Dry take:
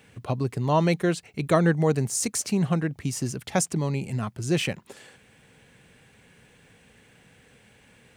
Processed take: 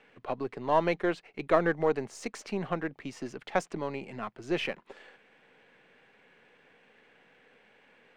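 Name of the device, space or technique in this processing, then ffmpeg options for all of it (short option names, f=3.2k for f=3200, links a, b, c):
crystal radio: -af "highpass=350,lowpass=2.6k,aeval=exprs='if(lt(val(0),0),0.708*val(0),val(0))':c=same"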